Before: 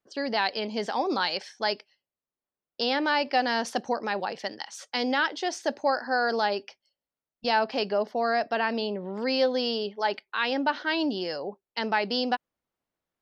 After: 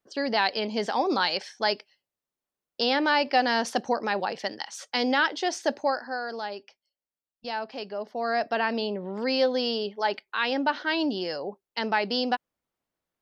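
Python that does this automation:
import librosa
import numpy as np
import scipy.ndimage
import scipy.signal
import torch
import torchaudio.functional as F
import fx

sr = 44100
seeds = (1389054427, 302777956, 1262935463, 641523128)

y = fx.gain(x, sr, db=fx.line((5.75, 2.0), (6.24, -8.0), (7.94, -8.0), (8.42, 0.5)))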